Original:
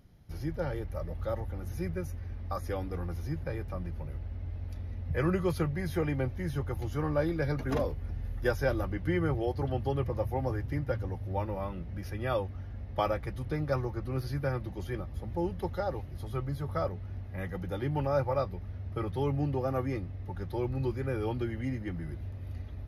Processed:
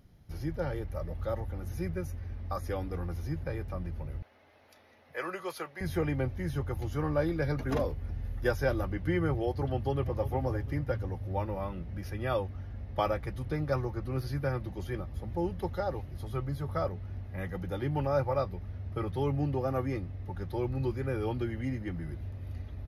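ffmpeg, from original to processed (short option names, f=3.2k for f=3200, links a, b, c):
-filter_complex "[0:a]asettb=1/sr,asplit=3[a][b][c];[a]atrim=end=4.224[d];[b]atrim=start=4.22:end=5.81,asetpts=PTS-STARTPTS,afade=t=in:d=0.004:c=qsin,afade=t=out:st=1.586:d=0.004:c=qsin,highpass=620[e];[c]atrim=start=5.806[f];[d][e]acrossfade=d=0.004:c1=hsin:c2=qsin[g];[g][f]acrossfade=d=0.004:c1=qsin:c2=hsin,asplit=2[h][i];[i]afade=t=in:st=9.64:d=0.01,afade=t=out:st=10.22:d=0.01,aecho=0:1:350|700|1050:0.223872|0.0783552|0.0274243[j];[h][j]amix=inputs=2:normalize=0"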